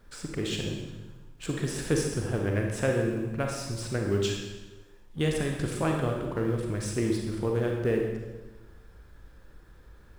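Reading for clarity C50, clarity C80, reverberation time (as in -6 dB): 2.5 dB, 4.5 dB, 1.2 s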